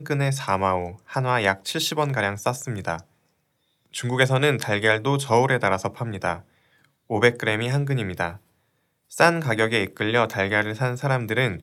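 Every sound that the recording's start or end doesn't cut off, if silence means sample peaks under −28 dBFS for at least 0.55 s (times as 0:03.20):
0:03.95–0:06.37
0:07.10–0:08.30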